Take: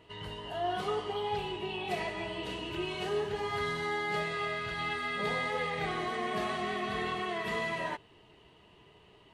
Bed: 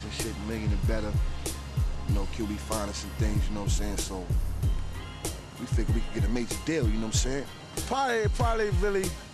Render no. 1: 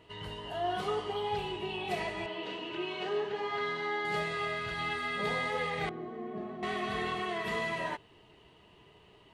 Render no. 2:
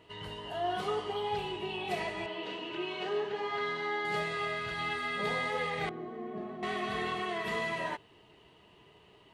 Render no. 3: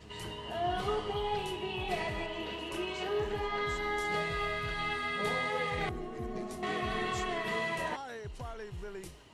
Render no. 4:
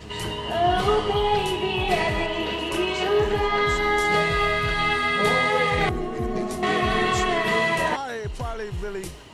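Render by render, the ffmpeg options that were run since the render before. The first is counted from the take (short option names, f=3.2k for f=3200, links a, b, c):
-filter_complex "[0:a]asettb=1/sr,asplit=3[a][b][c];[a]atrim=end=2.264[d];[b]atrim=start=2.26:end=4.05,asetpts=PTS-STARTPTS,afade=t=in:d=0.004:c=qsin,afade=t=out:st=1.786:d=0.004:c=qsin,highpass=240,lowpass=4.2k[e];[c]atrim=start=4.046[f];[d][e]acrossfade=d=0.004:c1=hsin:c2=qsin[g];[g][f]acrossfade=d=0.004:c1=qsin:c2=hsin,asettb=1/sr,asplit=3[h][i][j];[h]atrim=end=5.894[k];[i]atrim=start=5.89:end=6.63,asetpts=PTS-STARTPTS,afade=t=in:d=0.004:c=qsin,afade=t=out:st=0.736:d=0.004:c=qsin,bandpass=f=260:t=q:w=1.2[l];[j]atrim=start=6.626[m];[k][l]acrossfade=d=0.004:c1=hsin:c2=qsin[n];[n][m]acrossfade=d=0.004:c1=qsin:c2=hsin"
-af "lowshelf=f=72:g=-6.5"
-filter_complex "[1:a]volume=-16.5dB[a];[0:a][a]amix=inputs=2:normalize=0"
-af "volume=12dB"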